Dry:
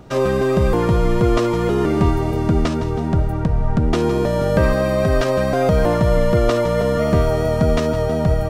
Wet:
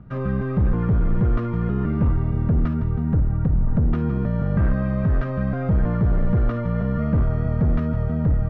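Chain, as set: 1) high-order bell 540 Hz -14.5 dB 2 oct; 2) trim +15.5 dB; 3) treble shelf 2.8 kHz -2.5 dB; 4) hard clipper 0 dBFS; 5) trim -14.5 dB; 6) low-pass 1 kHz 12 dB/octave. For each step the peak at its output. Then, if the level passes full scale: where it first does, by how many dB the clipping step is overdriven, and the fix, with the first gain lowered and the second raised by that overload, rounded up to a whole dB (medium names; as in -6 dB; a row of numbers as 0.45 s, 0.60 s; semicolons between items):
-6.5 dBFS, +9.0 dBFS, +9.0 dBFS, 0.0 dBFS, -14.5 dBFS, -14.0 dBFS; step 2, 9.0 dB; step 2 +6.5 dB, step 5 -5.5 dB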